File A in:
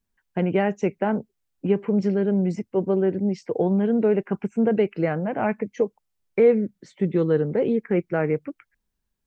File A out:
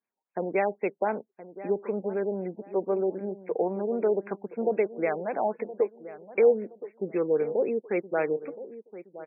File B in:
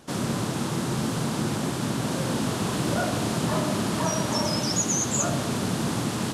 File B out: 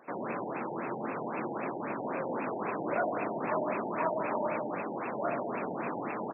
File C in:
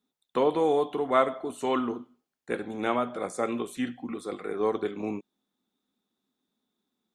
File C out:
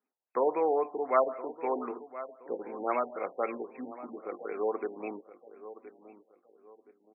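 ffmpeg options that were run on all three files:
ffmpeg -i in.wav -filter_complex "[0:a]highpass=460,lowpass=5300,highshelf=frequency=2500:width_type=q:width=1.5:gain=9.5,asplit=2[link_01][link_02];[link_02]adelay=1020,lowpass=frequency=1500:poles=1,volume=-14.5dB,asplit=2[link_03][link_04];[link_04]adelay=1020,lowpass=frequency=1500:poles=1,volume=0.34,asplit=2[link_05][link_06];[link_06]adelay=1020,lowpass=frequency=1500:poles=1,volume=0.34[link_07];[link_03][link_05][link_07]amix=inputs=3:normalize=0[link_08];[link_01][link_08]amix=inputs=2:normalize=0,afftfilt=real='re*lt(b*sr/1024,910*pow(2700/910,0.5+0.5*sin(2*PI*3.8*pts/sr)))':imag='im*lt(b*sr/1024,910*pow(2700/910,0.5+0.5*sin(2*PI*3.8*pts/sr)))':win_size=1024:overlap=0.75" out.wav

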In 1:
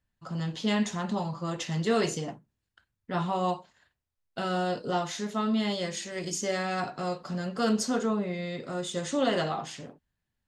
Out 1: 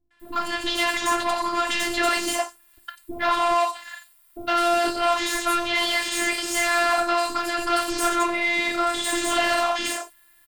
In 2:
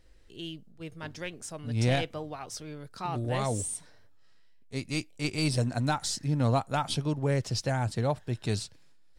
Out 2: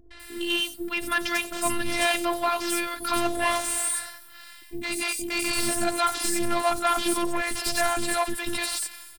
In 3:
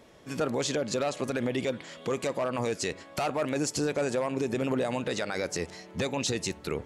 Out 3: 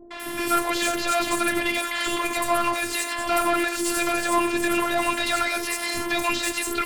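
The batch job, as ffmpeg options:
ffmpeg -i in.wav -filter_complex "[0:a]equalizer=frequency=450:width=0.84:gain=-10,asplit=2[link_01][link_02];[link_02]acompressor=threshold=-41dB:ratio=6,volume=2dB[link_03];[link_01][link_03]amix=inputs=2:normalize=0,aexciter=amount=10.5:drive=3.9:freq=8700,asplit=2[link_04][link_05];[link_05]highpass=frequency=720:poles=1,volume=33dB,asoftclip=type=tanh:threshold=-8.5dB[link_06];[link_04][link_06]amix=inputs=2:normalize=0,lowpass=frequency=2700:poles=1,volume=-6dB,afftfilt=real='hypot(re,im)*cos(PI*b)':imag='0':win_size=512:overlap=0.75,acrossover=split=450|5700[link_07][link_08][link_09];[link_08]adelay=110[link_10];[link_09]adelay=200[link_11];[link_07][link_10][link_11]amix=inputs=3:normalize=0" out.wav

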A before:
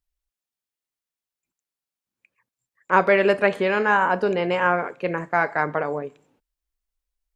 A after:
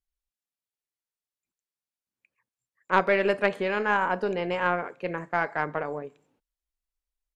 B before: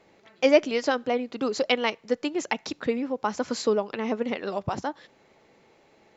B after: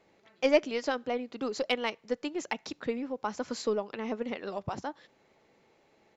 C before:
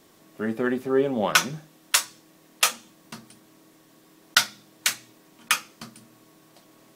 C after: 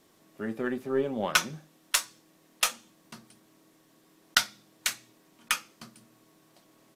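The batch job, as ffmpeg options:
ffmpeg -i in.wav -af "aresample=32000,aresample=44100,aeval=exprs='0.891*(cos(1*acos(clip(val(0)/0.891,-1,1)))-cos(1*PI/2))+0.126*(cos(3*acos(clip(val(0)/0.891,-1,1)))-cos(3*PI/2))+0.00708*(cos(8*acos(clip(val(0)/0.891,-1,1)))-cos(8*PI/2))':channel_layout=same,volume=-1.5dB" out.wav

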